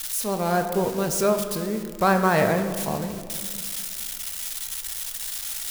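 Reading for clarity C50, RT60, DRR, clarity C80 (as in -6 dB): 7.5 dB, 2.0 s, 5.0 dB, 9.0 dB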